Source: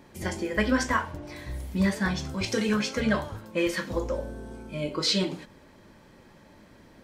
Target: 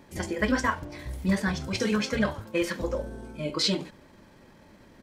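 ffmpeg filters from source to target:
-af "atempo=1.4"

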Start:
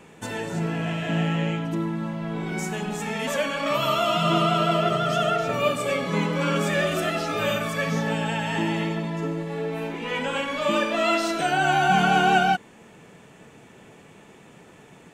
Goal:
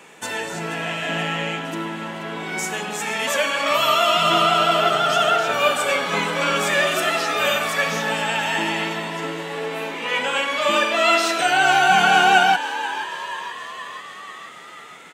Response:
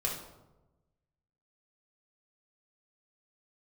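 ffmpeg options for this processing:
-filter_complex "[0:a]highpass=f=930:p=1,asplit=8[a][b][c][d][e][f][g][h];[b]adelay=481,afreqshift=95,volume=-13dB[i];[c]adelay=962,afreqshift=190,volume=-16.9dB[j];[d]adelay=1443,afreqshift=285,volume=-20.8dB[k];[e]adelay=1924,afreqshift=380,volume=-24.6dB[l];[f]adelay=2405,afreqshift=475,volume=-28.5dB[m];[g]adelay=2886,afreqshift=570,volume=-32.4dB[n];[h]adelay=3367,afreqshift=665,volume=-36.3dB[o];[a][i][j][k][l][m][n][o]amix=inputs=8:normalize=0,volume=8dB"

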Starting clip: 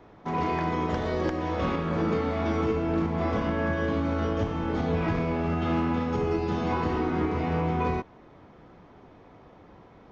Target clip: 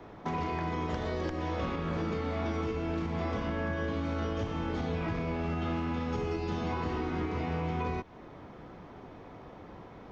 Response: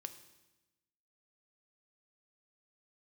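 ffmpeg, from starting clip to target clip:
-filter_complex "[0:a]acrossover=split=93|2100[a][b][c];[a]acompressor=threshold=-43dB:ratio=4[d];[b]acompressor=threshold=-37dB:ratio=4[e];[c]acompressor=threshold=-52dB:ratio=4[f];[d][e][f]amix=inputs=3:normalize=0,volume=3.5dB"

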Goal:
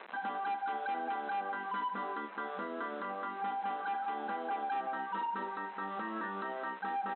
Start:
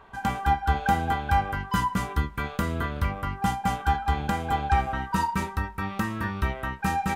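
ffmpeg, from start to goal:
-filter_complex "[0:a]asuperstop=centerf=2300:order=4:qfactor=2.9,asplit=2[a][b];[b]acompressor=threshold=-32dB:ratio=6,volume=-2.5dB[c];[a][c]amix=inputs=2:normalize=0,acrusher=bits=6:mix=0:aa=0.000001,acrossover=split=270 2900:gain=0.0891 1 0.224[d][e][f];[d][e][f]amix=inputs=3:normalize=0,aresample=11025,asoftclip=type=tanh:threshold=-22dB,aresample=44100,afftfilt=real='re*between(b*sr/4096,190,4100)':imag='im*between(b*sr/4096,190,4100)':win_size=4096:overlap=0.75,alimiter=level_in=6.5dB:limit=-24dB:level=0:latency=1:release=222,volume=-6.5dB,aecho=1:1:1035:0.1,adynamicequalizer=threshold=0.002:dfrequency=2700:dqfactor=0.7:tfrequency=2700:tqfactor=0.7:attack=5:release=100:ratio=0.375:range=2.5:mode=cutabove:tftype=highshelf"

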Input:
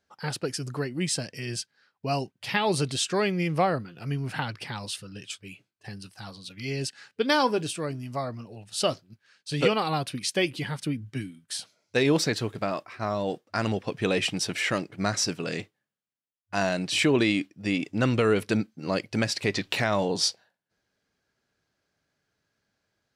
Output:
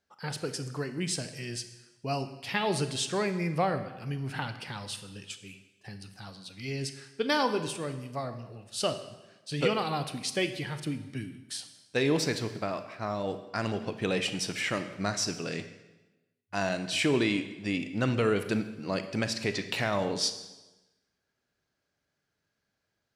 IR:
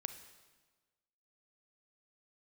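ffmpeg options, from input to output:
-filter_complex "[0:a]asettb=1/sr,asplit=3[a][b][c];[a]atrim=end=3.104[d];[b]atrim=start=3.1:end=3.54,asetpts=PTS-STARTPTS,afade=t=in:d=0.004:c=qsin,afade=t=out:st=0.436:d=0.004:c=qsin,asuperstop=centerf=3100:order=4:qfactor=2.3[e];[c]atrim=start=3.536[f];[d][e]acrossfade=d=0.004:c1=hsin:c2=qsin[g];[g][f]acrossfade=d=0.004:c1=qsin:c2=hsin[h];[1:a]atrim=start_sample=2205,asetrate=52920,aresample=44100[i];[h][i]afir=irnorm=-1:irlink=0"

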